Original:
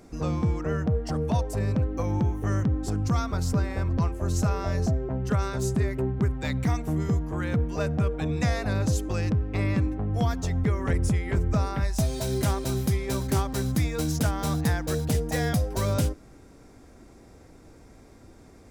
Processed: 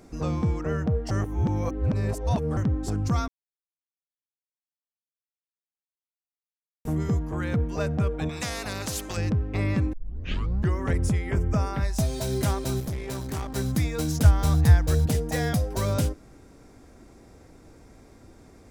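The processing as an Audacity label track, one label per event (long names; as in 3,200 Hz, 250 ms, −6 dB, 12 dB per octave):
1.110000	2.570000	reverse
3.280000	6.850000	silence
8.290000	9.170000	every bin compressed towards the loudest bin 2 to 1
9.930000	9.930000	tape start 0.86 s
11.290000	11.740000	Butterworth band-reject 4,000 Hz, Q 4
12.800000	13.560000	tube saturation drive 27 dB, bias 0.55
14.240000	15.060000	low shelf with overshoot 140 Hz +9.5 dB, Q 1.5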